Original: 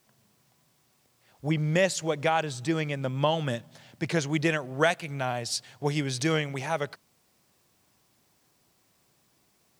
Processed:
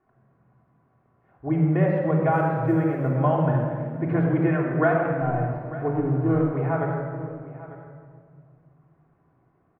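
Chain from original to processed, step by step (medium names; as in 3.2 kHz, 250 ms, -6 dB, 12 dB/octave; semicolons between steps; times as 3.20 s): 5.11–6.53 s: median filter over 25 samples; low-pass 1.5 kHz 24 dB/octave; 2.32–3.12 s: short-mantissa float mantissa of 6-bit; on a send: delay 897 ms -16.5 dB; on the sum: simulated room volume 3200 m³, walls mixed, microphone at 3.3 m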